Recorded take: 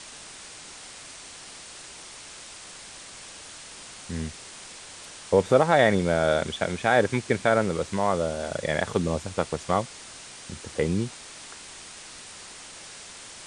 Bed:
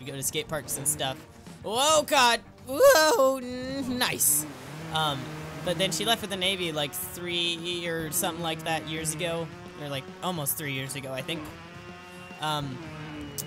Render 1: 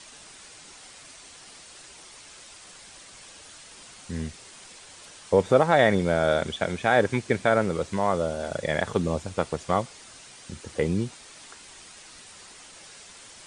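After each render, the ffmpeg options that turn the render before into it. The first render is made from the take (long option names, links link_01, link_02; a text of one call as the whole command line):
ffmpeg -i in.wav -af "afftdn=noise_reduction=6:noise_floor=-44" out.wav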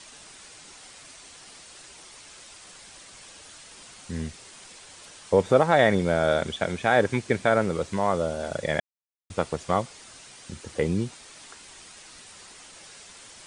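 ffmpeg -i in.wav -filter_complex "[0:a]asplit=3[link_01][link_02][link_03];[link_01]atrim=end=8.8,asetpts=PTS-STARTPTS,afade=type=out:start_time=8.796:duration=0.004:curve=hsin[link_04];[link_02]atrim=start=8.8:end=9.3,asetpts=PTS-STARTPTS,volume=0[link_05];[link_03]atrim=start=9.3,asetpts=PTS-STARTPTS,afade=type=in:duration=0.004:curve=hsin[link_06];[link_04][link_05][link_06]concat=n=3:v=0:a=1" out.wav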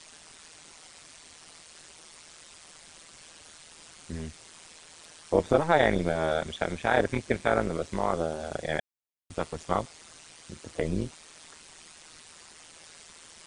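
ffmpeg -i in.wav -af "tremolo=f=160:d=0.857" out.wav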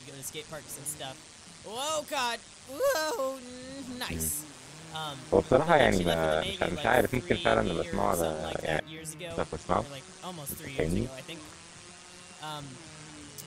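ffmpeg -i in.wav -i bed.wav -filter_complex "[1:a]volume=-10dB[link_01];[0:a][link_01]amix=inputs=2:normalize=0" out.wav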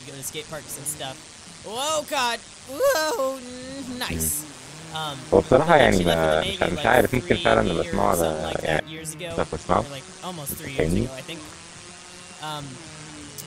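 ffmpeg -i in.wav -af "volume=7dB,alimiter=limit=-1dB:level=0:latency=1" out.wav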